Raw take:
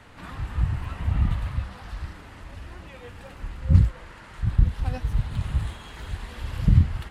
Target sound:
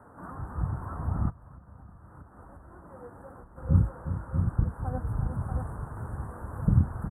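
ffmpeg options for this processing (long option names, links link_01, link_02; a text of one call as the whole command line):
ffmpeg -i in.wav -filter_complex "[0:a]asuperstop=centerf=3700:order=12:qfactor=0.53,highshelf=frequency=2900:gain=-8.5,aecho=1:1:360|638:0.282|0.501,asplit=3[link_01][link_02][link_03];[link_01]afade=type=out:start_time=1.29:duration=0.02[link_04];[link_02]acompressor=threshold=-39dB:ratio=16,afade=type=in:start_time=1.29:duration=0.02,afade=type=out:start_time=3.56:duration=0.02[link_05];[link_03]afade=type=in:start_time=3.56:duration=0.02[link_06];[link_04][link_05][link_06]amix=inputs=3:normalize=0,highpass=frequency=170:poles=1,volume=1dB" out.wav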